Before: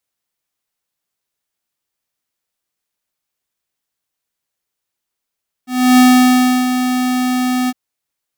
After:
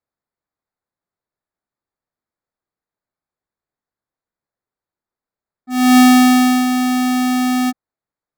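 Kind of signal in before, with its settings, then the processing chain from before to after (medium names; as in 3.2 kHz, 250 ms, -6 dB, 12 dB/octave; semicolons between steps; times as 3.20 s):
ADSR square 252 Hz, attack 310 ms, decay 683 ms, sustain -9 dB, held 2.02 s, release 39 ms -7 dBFS
local Wiener filter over 15 samples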